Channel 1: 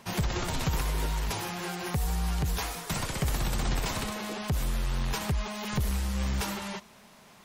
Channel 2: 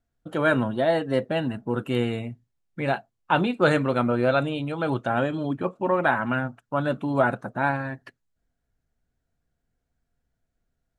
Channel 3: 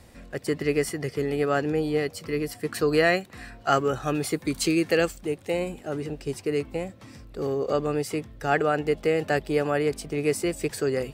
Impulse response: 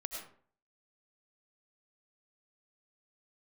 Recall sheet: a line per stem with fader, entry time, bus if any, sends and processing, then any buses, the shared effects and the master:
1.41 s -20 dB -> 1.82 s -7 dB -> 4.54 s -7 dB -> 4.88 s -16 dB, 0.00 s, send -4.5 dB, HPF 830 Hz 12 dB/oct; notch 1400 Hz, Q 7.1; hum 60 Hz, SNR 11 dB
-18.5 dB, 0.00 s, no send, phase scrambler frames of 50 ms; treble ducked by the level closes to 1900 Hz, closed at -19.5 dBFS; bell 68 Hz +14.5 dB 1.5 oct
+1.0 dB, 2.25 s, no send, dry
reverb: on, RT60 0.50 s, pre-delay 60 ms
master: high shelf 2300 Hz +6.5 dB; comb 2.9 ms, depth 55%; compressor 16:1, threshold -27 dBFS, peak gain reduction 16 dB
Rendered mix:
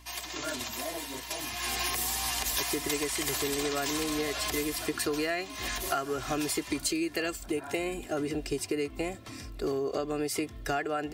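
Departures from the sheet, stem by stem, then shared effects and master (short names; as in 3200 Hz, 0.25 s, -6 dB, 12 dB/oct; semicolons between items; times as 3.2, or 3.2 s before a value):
stem 1 -20.0 dB -> -9.5 dB; stem 2: missing bell 68 Hz +14.5 dB 1.5 oct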